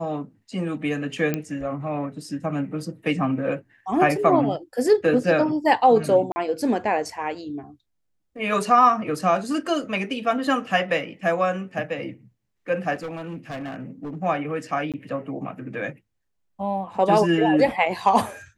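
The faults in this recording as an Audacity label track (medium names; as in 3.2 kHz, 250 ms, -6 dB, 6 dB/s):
1.340000	1.340000	pop -11 dBFS
6.320000	6.360000	dropout 40 ms
12.940000	14.180000	clipped -28.5 dBFS
14.920000	14.940000	dropout 17 ms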